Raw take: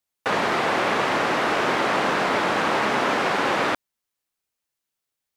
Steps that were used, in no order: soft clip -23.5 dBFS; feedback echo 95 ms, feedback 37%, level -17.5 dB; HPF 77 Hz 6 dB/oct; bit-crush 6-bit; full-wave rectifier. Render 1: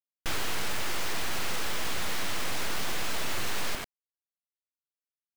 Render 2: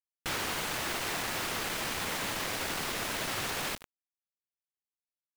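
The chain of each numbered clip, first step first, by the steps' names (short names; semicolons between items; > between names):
HPF > full-wave rectifier > feedback echo > soft clip > bit-crush; full-wave rectifier > feedback echo > soft clip > HPF > bit-crush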